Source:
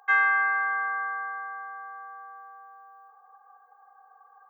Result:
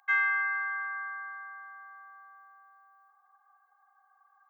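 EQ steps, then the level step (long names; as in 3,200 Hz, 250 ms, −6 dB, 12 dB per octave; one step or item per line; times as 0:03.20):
high-pass filter 1,400 Hz 12 dB per octave
parametric band 2,200 Hz +5.5 dB 0.23 octaves
−3.5 dB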